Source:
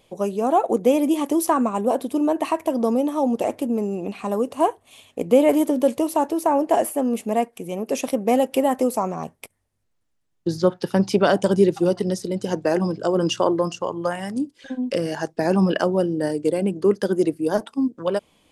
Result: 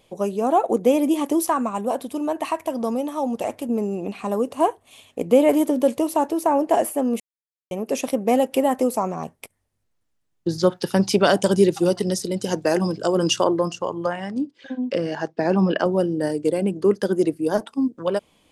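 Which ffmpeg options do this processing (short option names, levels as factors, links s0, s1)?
-filter_complex "[0:a]asettb=1/sr,asplit=3[s0][s1][s2];[s0]atrim=end=1.454[s3];[s1]atrim=start=1.45:end=3.69,asetpts=PTS-STARTPTS,afade=t=in:d=0.004:c=qsin,afade=t=out:st=2.236:d=0.004:c=qsin,equalizer=f=350:w=0.91:g=-6[s4];[s2]atrim=start=3.686[s5];[s3][s4]acrossfade=d=0.004:c1=hsin:c2=qsin[s6];[s6][s5]acrossfade=d=0.004:c1=qsin:c2=hsin,asettb=1/sr,asplit=3[s7][s8][s9];[s7]atrim=end=10.584[s10];[s8]atrim=start=10.58:end=13.44,asetpts=PTS-STARTPTS,afade=t=in:d=0.004:c=qsin,afade=t=out:st=2.856:d=0.004:c=qsin,highshelf=f=2900:g=8[s11];[s9]atrim=start=13.436[s12];[s10][s11]acrossfade=d=0.004:c1=hsin:c2=qsin[s13];[s13][s12]acrossfade=d=0.004:c1=qsin:c2=hsin,asettb=1/sr,asplit=3[s14][s15][s16];[s14]atrim=end=14.064[s17];[s15]atrim=start=14.06:end=15.86,asetpts=PTS-STARTPTS,afade=t=in:d=0.004:c=qsin,afade=t=out:st=1.796:d=0.004:c=qsin,highpass=120,lowpass=4400[s18];[s16]atrim=start=15.856[s19];[s17][s18]acrossfade=d=0.004:c1=hsin:c2=qsin[s20];[s20][s19]acrossfade=d=0.004:c1=qsin:c2=hsin,asplit=3[s21][s22][s23];[s21]atrim=end=7.2,asetpts=PTS-STARTPTS,afade=t=out:st=7.196:d=0.004:c=hsin[s24];[s22]atrim=start=7.2:end=7.71,asetpts=PTS-STARTPTS,volume=0[s25];[s23]atrim=start=7.71,asetpts=PTS-STARTPTS,afade=t=in:d=0.004:c=hsin[s26];[s24][s25][s26]concat=n=3:v=0:a=1"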